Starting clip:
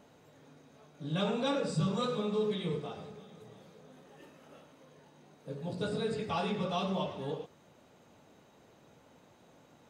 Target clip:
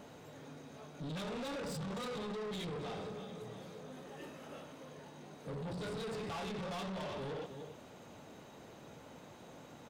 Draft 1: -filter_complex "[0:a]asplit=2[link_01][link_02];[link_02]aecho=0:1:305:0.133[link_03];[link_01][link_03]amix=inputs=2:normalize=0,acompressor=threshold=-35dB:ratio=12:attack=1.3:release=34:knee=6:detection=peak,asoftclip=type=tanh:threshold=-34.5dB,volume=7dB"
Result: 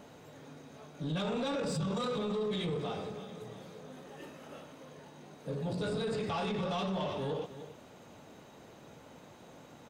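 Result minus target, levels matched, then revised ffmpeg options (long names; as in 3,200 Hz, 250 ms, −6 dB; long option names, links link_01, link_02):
soft clipping: distortion −12 dB
-filter_complex "[0:a]asplit=2[link_01][link_02];[link_02]aecho=0:1:305:0.133[link_03];[link_01][link_03]amix=inputs=2:normalize=0,acompressor=threshold=-35dB:ratio=12:attack=1.3:release=34:knee=6:detection=peak,asoftclip=type=tanh:threshold=-46dB,volume=7dB"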